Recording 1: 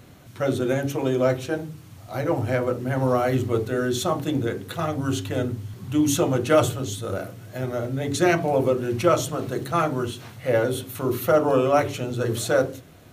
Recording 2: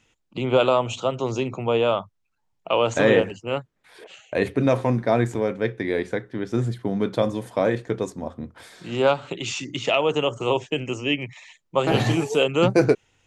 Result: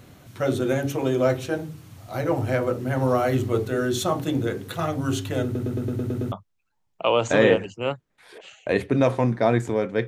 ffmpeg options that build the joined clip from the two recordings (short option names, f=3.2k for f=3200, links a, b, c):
-filter_complex "[0:a]apad=whole_dur=10.07,atrim=end=10.07,asplit=8[a][b][c][d][e][f][g][h];[a]atrim=end=5.552[i];[b]atrim=start=5.438:end=5.552[j];[c]atrim=start=5.438:end=5.552[k];[d]atrim=start=5.438:end=5.552[l];[e]atrim=start=5.438:end=5.552[m];[f]atrim=start=5.438:end=5.552[n];[g]atrim=start=5.438:end=5.552[o];[h]atrim=start=5.438:end=5.552[p];[1:a]atrim=start=1.978:end=5.73[q];[i][j]acrossfade=d=0.004:c1=hsin:c2=hsin[r];[r][k]acrossfade=d=0.004:c1=hsin:c2=hsin[s];[s][l]acrossfade=d=0.004:c1=hsin:c2=hsin[t];[t][m]acrossfade=d=0.004:c1=hsin:c2=hsin[u];[u][n]acrossfade=d=0.004:c1=hsin:c2=hsin[v];[v][o]acrossfade=d=0.004:c1=hsin:c2=hsin[w];[w][p]acrossfade=d=0.004:c1=hsin:c2=hsin[x];[x][q]acrossfade=d=0.004:c1=hsin:c2=hsin"